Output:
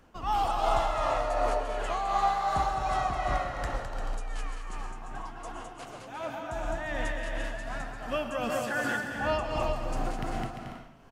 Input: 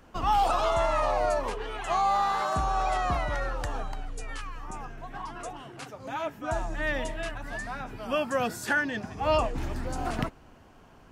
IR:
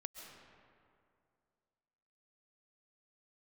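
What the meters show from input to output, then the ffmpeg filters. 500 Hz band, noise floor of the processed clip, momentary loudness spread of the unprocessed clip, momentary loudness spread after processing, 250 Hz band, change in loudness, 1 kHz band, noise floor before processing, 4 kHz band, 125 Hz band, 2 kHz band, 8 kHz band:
-2.0 dB, -45 dBFS, 15 LU, 14 LU, -2.0 dB, -2.0 dB, -1.5 dB, -54 dBFS, -2.0 dB, -2.0 dB, -2.5 dB, -2.5 dB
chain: -filter_complex "[0:a]aecho=1:1:210|346.5|435.2|492.9|530.4:0.631|0.398|0.251|0.158|0.1[a];[1:a]atrim=start_sample=2205,afade=t=out:st=0.34:d=0.01,atrim=end_sample=15435,asetrate=48510,aresample=44100[b];[a][b]afir=irnorm=-1:irlink=0,tremolo=f=2.7:d=0.4,volume=2.5dB"

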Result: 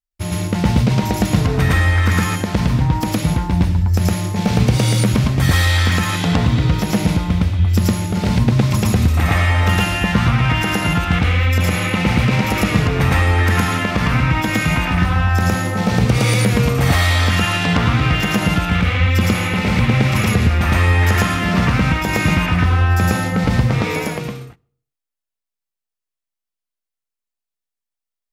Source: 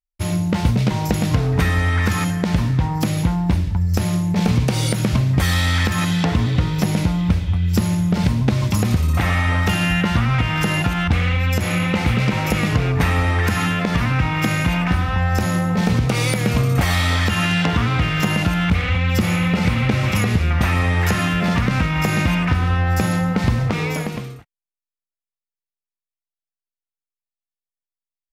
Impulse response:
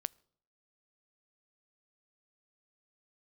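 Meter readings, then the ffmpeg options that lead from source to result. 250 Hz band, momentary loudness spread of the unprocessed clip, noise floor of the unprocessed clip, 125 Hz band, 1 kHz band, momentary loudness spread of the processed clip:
+1.5 dB, 2 LU, under -85 dBFS, +2.5 dB, +3.0 dB, 4 LU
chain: -filter_complex "[0:a]asplit=2[a][b];[1:a]atrim=start_sample=2205,adelay=112[c];[b][c]afir=irnorm=-1:irlink=0,volume=3dB[d];[a][d]amix=inputs=2:normalize=0,volume=-1dB"

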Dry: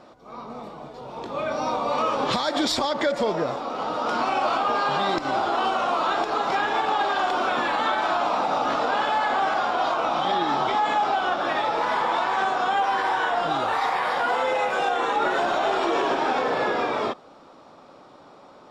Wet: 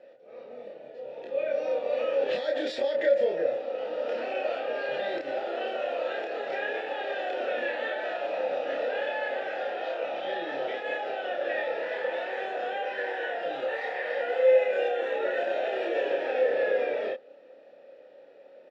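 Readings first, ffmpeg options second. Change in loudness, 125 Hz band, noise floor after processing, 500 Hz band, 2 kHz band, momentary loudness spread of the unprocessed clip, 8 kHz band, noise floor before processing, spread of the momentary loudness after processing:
-6.0 dB, under -15 dB, -52 dBFS, +0.5 dB, -6.0 dB, 5 LU, n/a, -49 dBFS, 8 LU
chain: -filter_complex "[0:a]asplit=3[a][b][c];[a]bandpass=f=530:t=q:w=8,volume=0dB[d];[b]bandpass=f=1.84k:t=q:w=8,volume=-6dB[e];[c]bandpass=f=2.48k:t=q:w=8,volume=-9dB[f];[d][e][f]amix=inputs=3:normalize=0,asplit=2[g][h];[h]adelay=29,volume=-2dB[i];[g][i]amix=inputs=2:normalize=0,volume=4dB"

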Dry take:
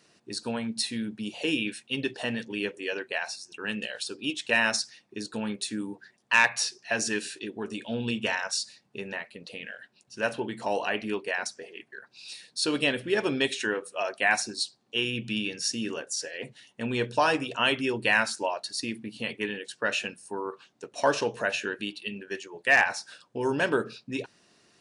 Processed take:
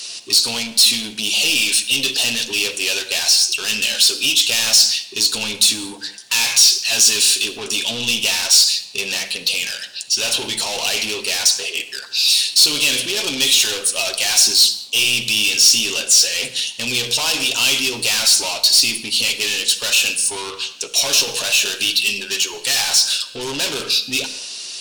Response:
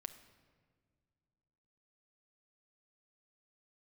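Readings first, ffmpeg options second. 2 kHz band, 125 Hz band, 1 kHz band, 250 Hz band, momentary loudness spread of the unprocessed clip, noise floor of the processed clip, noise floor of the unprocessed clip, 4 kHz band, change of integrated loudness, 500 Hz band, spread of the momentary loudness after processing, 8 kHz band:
+6.5 dB, +1.5 dB, -0.5 dB, -0.5 dB, 14 LU, -36 dBFS, -67 dBFS, +20.0 dB, +14.0 dB, 0.0 dB, 10 LU, +22.0 dB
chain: -filter_complex "[0:a]asoftclip=type=tanh:threshold=-26dB,asplit=2[a][b];[b]highpass=f=720:p=1,volume=22dB,asoftclip=type=tanh:threshold=-26dB[c];[a][c]amix=inputs=2:normalize=0,lowpass=f=3.6k:p=1,volume=-6dB,aexciter=amount=10.7:drive=4.9:freq=2.7k[d];[1:a]atrim=start_sample=2205,afade=t=out:st=0.24:d=0.01,atrim=end_sample=11025,asetrate=36603,aresample=44100[e];[d][e]afir=irnorm=-1:irlink=0,volume=5.5dB"

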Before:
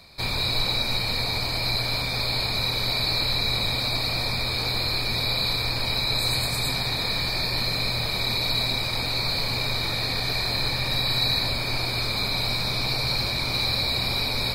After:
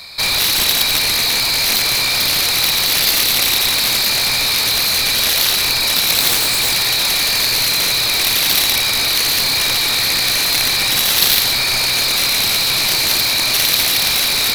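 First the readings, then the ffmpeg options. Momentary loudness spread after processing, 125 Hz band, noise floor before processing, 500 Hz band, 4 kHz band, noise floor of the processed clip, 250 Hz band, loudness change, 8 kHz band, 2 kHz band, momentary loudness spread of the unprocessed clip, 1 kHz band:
1 LU, -3.5 dB, -28 dBFS, +4.5 dB, +10.5 dB, -17 dBFS, +3.0 dB, +11.0 dB, +22.0 dB, +10.5 dB, 2 LU, +7.0 dB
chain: -af "tiltshelf=f=850:g=-8,aeval=exprs='0.596*(cos(1*acos(clip(val(0)/0.596,-1,1)))-cos(1*PI/2))+0.299*(cos(7*acos(clip(val(0)/0.596,-1,1)))-cos(7*PI/2))':c=same,volume=2dB"

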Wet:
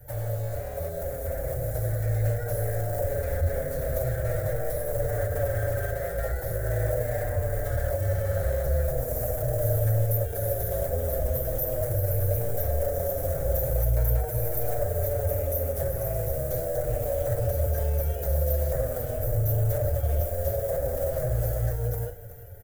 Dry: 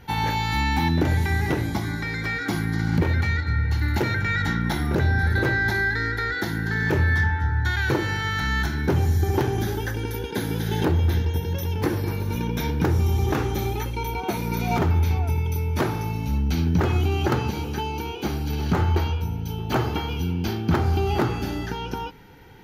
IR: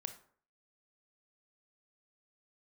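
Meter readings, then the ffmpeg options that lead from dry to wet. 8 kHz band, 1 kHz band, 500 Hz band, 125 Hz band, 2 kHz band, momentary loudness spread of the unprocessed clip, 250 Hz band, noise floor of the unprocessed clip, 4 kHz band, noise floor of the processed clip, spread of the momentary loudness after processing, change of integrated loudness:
+1.5 dB, -11.0 dB, +3.0 dB, -4.0 dB, -16.0 dB, 7 LU, -16.5 dB, -31 dBFS, under -15 dB, -33 dBFS, 5 LU, -3.5 dB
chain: -filter_complex "[0:a]asplit=2[a][b];[b]adelay=46,volume=-11.5dB[c];[a][c]amix=inputs=2:normalize=0,asplit=2[d][e];[e]acrusher=samples=38:mix=1:aa=0.000001,volume=-4.5dB[f];[d][f]amix=inputs=2:normalize=0,acrossover=split=170|1100[g][h][i];[g]acompressor=threshold=-17dB:ratio=4[j];[h]acompressor=threshold=-30dB:ratio=4[k];[i]acompressor=threshold=-38dB:ratio=4[l];[j][k][l]amix=inputs=3:normalize=0,aeval=exprs='0.0631*(abs(mod(val(0)/0.0631+3,4)-2)-1)':c=same,highshelf=f=4.2k:g=8.5,asplit=2[m][n];[n]aecho=0:1:377:0.211[o];[m][o]amix=inputs=2:normalize=0,dynaudnorm=f=650:g=7:m=8.5dB,alimiter=limit=-16.5dB:level=0:latency=1:release=175,firequalizer=gain_entry='entry(120,0);entry(200,-25);entry(360,-17);entry(560,9);entry(950,-23);entry(1600,-10);entry(2600,-26);entry(4600,-22);entry(7700,-8);entry(14000,3)':delay=0.05:min_phase=1,asplit=2[p][q];[q]adelay=6.3,afreqshift=-0.41[r];[p][r]amix=inputs=2:normalize=1,volume=3dB"

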